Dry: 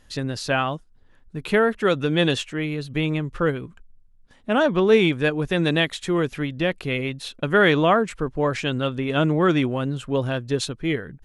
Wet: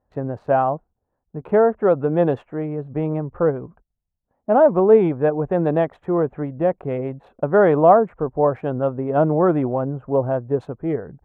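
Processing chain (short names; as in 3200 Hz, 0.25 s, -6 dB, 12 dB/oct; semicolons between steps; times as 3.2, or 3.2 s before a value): Wiener smoothing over 9 samples; HPF 44 Hz; gate -49 dBFS, range -14 dB; EQ curve 300 Hz 0 dB, 750 Hz +10 dB, 3300 Hz -25 dB, 4900 Hz -30 dB; 8.22–10.61 mismatched tape noise reduction decoder only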